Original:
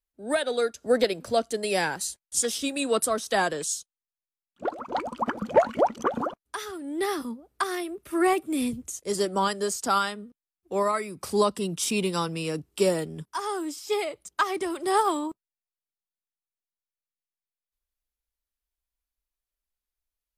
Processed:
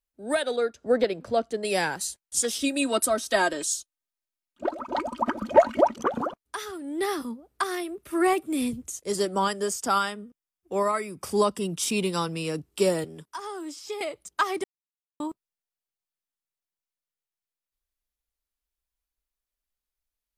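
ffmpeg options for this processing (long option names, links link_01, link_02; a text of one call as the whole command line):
ffmpeg -i in.wav -filter_complex "[0:a]asettb=1/sr,asplit=3[link_01][link_02][link_03];[link_01]atrim=end=0.564[link_04];[link_02]atrim=start=0.56:end=1.65,asetpts=PTS-STARTPTS,afade=type=in:duration=0.004:curve=qsin,afade=type=out:start_time=1.086:duration=0.004:curve=qsin,aemphasis=mode=reproduction:type=75kf[link_05];[link_03]atrim=start=1.646[link_06];[link_04][link_05]acrossfade=duration=0.004:curve1=hsin:curve2=qsin[link_07];[link_07][link_06]acrossfade=duration=0.004:curve1=qsin:curve2=hsin,asettb=1/sr,asplit=3[link_08][link_09][link_10];[link_08]atrim=end=2.604[link_11];[link_09]atrim=start=2.6:end=5.94,asetpts=PTS-STARTPTS,afade=type=in:duration=0.004:curve=qsin,afade=type=out:start_time=3.336:duration=0.004:curve=qsin,aecho=1:1:3.2:0.65,atrim=end_sample=147294[link_12];[link_10]atrim=start=5.936[link_13];[link_11][link_12]acrossfade=duration=0.004:curve1=hsin:curve2=qsin[link_14];[link_14][link_13]acrossfade=duration=0.004:curve1=qsin:curve2=hsin,asettb=1/sr,asplit=3[link_15][link_16][link_17];[link_15]atrim=end=9.364[link_18];[link_16]atrim=start=9.36:end=11.74,asetpts=PTS-STARTPTS,afade=type=in:duration=0.004:curve=qsin,afade=type=out:start_time=2.376:duration=0.004:curve=qsin,bandreject=frequency=4100:width=6.9[link_19];[link_17]atrim=start=11.736[link_20];[link_18][link_19]acrossfade=duration=0.004:curve1=hsin:curve2=qsin[link_21];[link_21][link_20]acrossfade=duration=0.004:curve1=qsin:curve2=hsin,asettb=1/sr,asplit=3[link_22][link_23][link_24];[link_22]atrim=end=13.044[link_25];[link_23]atrim=start=13.04:end=14.01,asetpts=PTS-STARTPTS,afade=type=in:duration=0.004:curve=qsin,afade=type=out:start_time=0.966:duration=0.004:curve=qsin,acrossover=split=270|7800[link_26][link_27][link_28];[link_26]acompressor=threshold=-49dB:ratio=4[link_29];[link_27]acompressor=threshold=-34dB:ratio=4[link_30];[link_28]acompressor=threshold=-58dB:ratio=4[link_31];[link_29][link_30][link_31]amix=inputs=3:normalize=0[link_32];[link_24]atrim=start=14.006[link_33];[link_25][link_32]acrossfade=duration=0.004:curve1=hsin:curve2=qsin[link_34];[link_34][link_33]acrossfade=duration=0.004:curve1=qsin:curve2=hsin,asplit=3[link_35][link_36][link_37];[link_35]atrim=end=14.64,asetpts=PTS-STARTPTS,afade=type=out:start_time=14.636:duration=0.004:curve=hsin[link_38];[link_36]atrim=start=14.64:end=15.2,asetpts=PTS-STARTPTS,volume=0[link_39];[link_37]atrim=start=15.2,asetpts=PTS-STARTPTS,afade=type=in:duration=0.004:curve=hsin[link_40];[link_38][link_39][link_40]concat=n=3:v=0:a=1" out.wav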